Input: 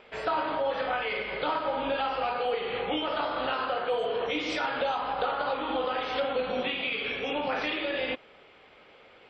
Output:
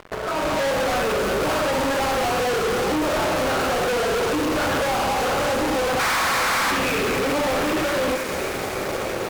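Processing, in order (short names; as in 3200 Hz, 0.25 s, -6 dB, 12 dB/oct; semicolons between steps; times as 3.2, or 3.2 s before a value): median filter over 41 samples; soft clip -38 dBFS, distortion -7 dB; compressor 10:1, threshold -50 dBFS, peak gain reduction 10.5 dB; painted sound noise, 5.99–6.71, 610–2500 Hz -42 dBFS; bell 1200 Hz +8 dB 1 oct; thin delay 0.306 s, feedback 82%, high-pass 5300 Hz, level -3.5 dB; on a send at -7.5 dB: reverb RT60 0.85 s, pre-delay 3 ms; on the sum: AGC gain up to 12 dB; fuzz box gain 44 dB, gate -53 dBFS; gain -7 dB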